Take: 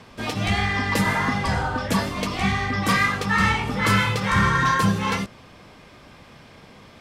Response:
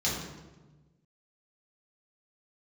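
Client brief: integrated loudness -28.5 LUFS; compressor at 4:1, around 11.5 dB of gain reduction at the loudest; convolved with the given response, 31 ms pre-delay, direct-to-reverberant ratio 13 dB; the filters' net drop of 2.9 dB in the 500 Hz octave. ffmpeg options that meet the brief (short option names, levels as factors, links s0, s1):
-filter_complex "[0:a]equalizer=f=500:t=o:g=-3.5,acompressor=threshold=0.0316:ratio=4,asplit=2[s0][s1];[1:a]atrim=start_sample=2205,adelay=31[s2];[s1][s2]afir=irnorm=-1:irlink=0,volume=0.0841[s3];[s0][s3]amix=inputs=2:normalize=0,volume=1.33"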